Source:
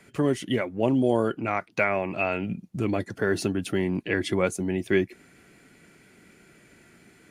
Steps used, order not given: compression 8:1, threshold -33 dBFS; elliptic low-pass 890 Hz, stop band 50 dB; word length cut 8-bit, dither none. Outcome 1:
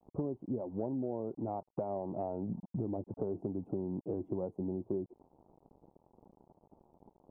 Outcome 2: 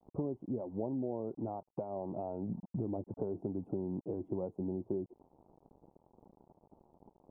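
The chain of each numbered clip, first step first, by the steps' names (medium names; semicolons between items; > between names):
word length cut > elliptic low-pass > compression; word length cut > compression > elliptic low-pass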